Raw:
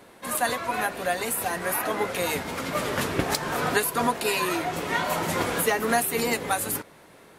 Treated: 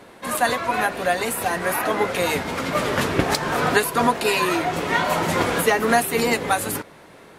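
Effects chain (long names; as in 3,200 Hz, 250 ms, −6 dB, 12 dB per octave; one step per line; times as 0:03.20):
high-shelf EQ 8,600 Hz −8.5 dB
level +5.5 dB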